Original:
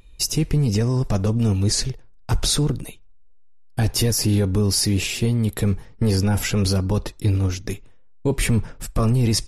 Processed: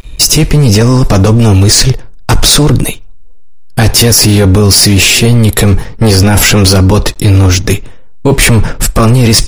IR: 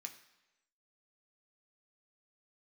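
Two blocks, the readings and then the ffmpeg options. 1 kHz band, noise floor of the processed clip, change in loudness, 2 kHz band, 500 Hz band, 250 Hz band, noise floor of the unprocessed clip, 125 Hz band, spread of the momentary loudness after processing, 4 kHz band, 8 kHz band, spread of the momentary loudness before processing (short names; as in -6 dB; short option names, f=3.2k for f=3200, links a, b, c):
+18.0 dB, -25 dBFS, +15.0 dB, +19.0 dB, +15.0 dB, +13.5 dB, -45 dBFS, +13.5 dB, 8 LU, +17.0 dB, +16.5 dB, 10 LU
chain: -af "aeval=exprs='sgn(val(0))*max(abs(val(0))-0.00168,0)':c=same,apsyclip=25.5dB,volume=-2dB"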